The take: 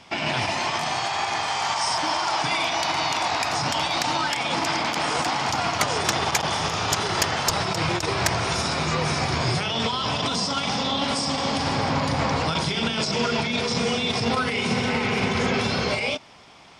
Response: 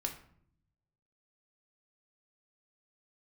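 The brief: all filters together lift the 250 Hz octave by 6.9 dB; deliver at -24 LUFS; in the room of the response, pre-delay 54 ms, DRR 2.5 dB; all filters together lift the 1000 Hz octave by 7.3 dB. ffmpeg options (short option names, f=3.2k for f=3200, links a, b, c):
-filter_complex "[0:a]equalizer=f=250:t=o:g=8,equalizer=f=1k:t=o:g=8.5,asplit=2[a][b];[1:a]atrim=start_sample=2205,adelay=54[c];[b][c]afir=irnorm=-1:irlink=0,volume=-3.5dB[d];[a][d]amix=inputs=2:normalize=0,volume=-6.5dB"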